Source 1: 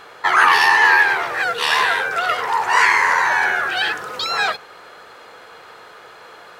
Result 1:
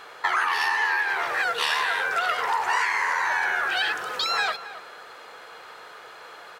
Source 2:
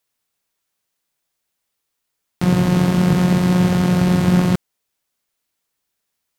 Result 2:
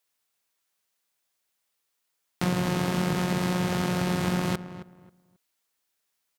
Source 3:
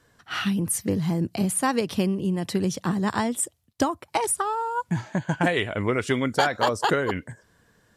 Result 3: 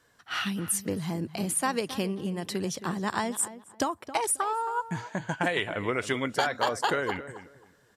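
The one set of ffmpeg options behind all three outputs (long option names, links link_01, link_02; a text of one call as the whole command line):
ffmpeg -i in.wav -filter_complex "[0:a]lowshelf=frequency=330:gain=-8.5,acompressor=threshold=-19dB:ratio=10,asplit=2[link_01][link_02];[link_02]adelay=269,lowpass=frequency=1900:poles=1,volume=-13dB,asplit=2[link_03][link_04];[link_04]adelay=269,lowpass=frequency=1900:poles=1,volume=0.23,asplit=2[link_05][link_06];[link_06]adelay=269,lowpass=frequency=1900:poles=1,volume=0.23[link_07];[link_03][link_05][link_07]amix=inputs=3:normalize=0[link_08];[link_01][link_08]amix=inputs=2:normalize=0,volume=-1.5dB" out.wav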